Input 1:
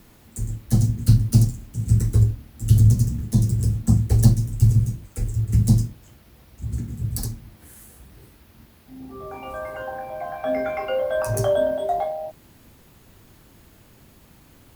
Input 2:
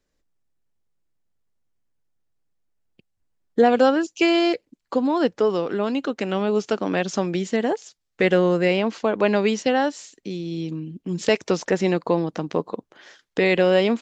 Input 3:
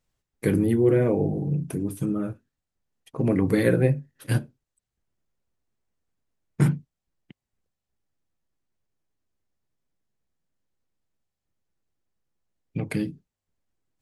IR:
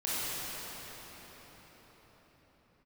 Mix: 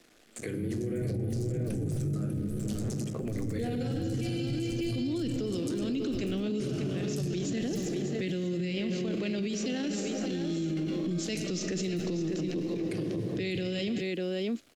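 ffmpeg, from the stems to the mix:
-filter_complex "[0:a]aeval=exprs='max(val(0),0)':c=same,volume=1.5dB,asplit=2[a][b];[b]volume=-19dB[c];[1:a]equalizer=f=320:w=2:g=11.5,volume=1.5dB,asplit=3[d][e][f];[e]volume=-14.5dB[g];[f]volume=-8.5dB[h];[2:a]equalizer=f=70:w=0.39:g=12,volume=2dB,asplit=4[i][j][k][l];[j]volume=-23dB[m];[k]volume=-15dB[n];[l]apad=whole_len=617883[o];[d][o]sidechaincompress=threshold=-28dB:ratio=8:attack=16:release=506[p];[a][i]amix=inputs=2:normalize=0,highpass=380,lowpass=7.8k,acompressor=threshold=-30dB:ratio=6,volume=0dB[q];[3:a]atrim=start_sample=2205[r];[g][m]amix=inputs=2:normalize=0[s];[s][r]afir=irnorm=-1:irlink=0[t];[c][h][n]amix=inputs=3:normalize=0,aecho=0:1:596:1[u];[p][q][t][u]amix=inputs=4:normalize=0,equalizer=f=940:t=o:w=0.52:g=-11.5,acrossover=split=190|3000[v][w][x];[w]acompressor=threshold=-31dB:ratio=6[y];[v][y][x]amix=inputs=3:normalize=0,alimiter=level_in=1dB:limit=-24dB:level=0:latency=1:release=19,volume=-1dB"

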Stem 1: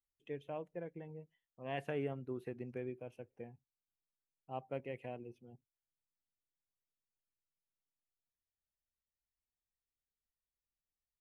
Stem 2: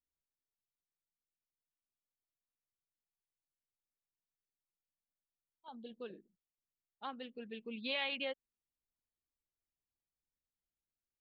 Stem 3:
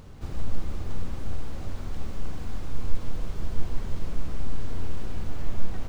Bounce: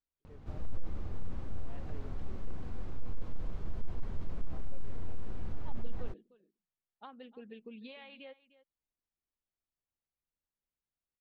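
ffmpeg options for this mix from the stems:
-filter_complex "[0:a]volume=-15dB[a];[1:a]acompressor=threshold=-44dB:ratio=12,volume=0.5dB,asplit=2[b][c];[c]volume=-17.5dB[d];[2:a]aeval=exprs='0.398*sin(PI/2*1.58*val(0)/0.398)':c=same,adelay=250,volume=-14dB[e];[d]aecho=0:1:301:1[f];[a][b][e][f]amix=inputs=4:normalize=0,lowpass=f=1.8k:p=1"

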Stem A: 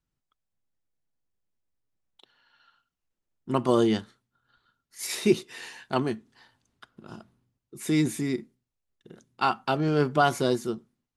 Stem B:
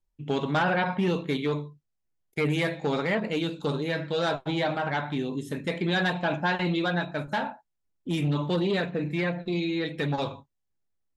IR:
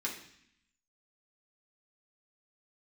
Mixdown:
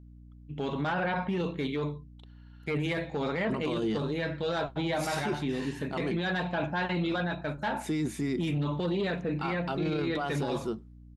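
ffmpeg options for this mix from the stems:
-filter_complex "[0:a]alimiter=limit=-15.5dB:level=0:latency=1:release=167,volume=-2dB[a];[1:a]adelay=300,volume=-1.5dB[b];[a][b]amix=inputs=2:normalize=0,highshelf=f=6.9k:g=-9,aeval=exprs='val(0)+0.00355*(sin(2*PI*60*n/s)+sin(2*PI*2*60*n/s)/2+sin(2*PI*3*60*n/s)/3+sin(2*PI*4*60*n/s)/4+sin(2*PI*5*60*n/s)/5)':c=same,alimiter=limit=-22.5dB:level=0:latency=1:release=11"

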